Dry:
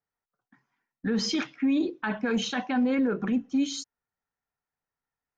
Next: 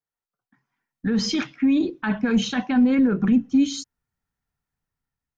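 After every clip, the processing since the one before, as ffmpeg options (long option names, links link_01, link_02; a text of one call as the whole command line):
ffmpeg -i in.wav -af "asubboost=boost=4.5:cutoff=240,dynaudnorm=framelen=330:gausssize=5:maxgain=8.5dB,volume=-5dB" out.wav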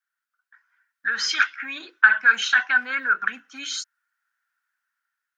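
ffmpeg -i in.wav -af "highpass=frequency=1500:width_type=q:width=8,volume=2dB" out.wav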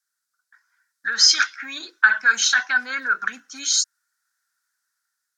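ffmpeg -i in.wav -af "aexciter=amount=10.1:drive=5.3:freq=4200,aemphasis=mode=reproduction:type=50fm" out.wav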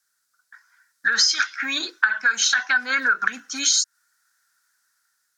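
ffmpeg -i in.wav -af "acompressor=threshold=-24dB:ratio=10,volume=8dB" out.wav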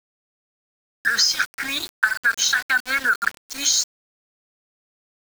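ffmpeg -i in.wav -af "aeval=exprs='val(0)*gte(abs(val(0)),0.0447)':channel_layout=same" out.wav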